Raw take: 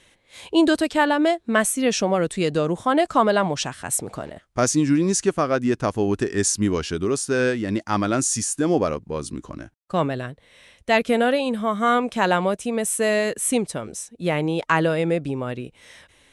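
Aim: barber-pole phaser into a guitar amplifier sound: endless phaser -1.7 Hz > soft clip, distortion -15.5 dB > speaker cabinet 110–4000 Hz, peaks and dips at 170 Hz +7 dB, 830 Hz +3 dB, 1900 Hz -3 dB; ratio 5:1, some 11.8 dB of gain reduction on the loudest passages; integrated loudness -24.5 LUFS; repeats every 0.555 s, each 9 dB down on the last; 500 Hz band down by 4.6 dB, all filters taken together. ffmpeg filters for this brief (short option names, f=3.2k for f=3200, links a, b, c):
-filter_complex "[0:a]equalizer=f=500:t=o:g=-6.5,acompressor=threshold=-29dB:ratio=5,aecho=1:1:555|1110|1665|2220:0.355|0.124|0.0435|0.0152,asplit=2[a][b];[b]afreqshift=-1.7[c];[a][c]amix=inputs=2:normalize=1,asoftclip=threshold=-29dB,highpass=110,equalizer=f=170:t=q:w=4:g=7,equalizer=f=830:t=q:w=4:g=3,equalizer=f=1.9k:t=q:w=4:g=-3,lowpass=f=4k:w=0.5412,lowpass=f=4k:w=1.3066,volume=13dB"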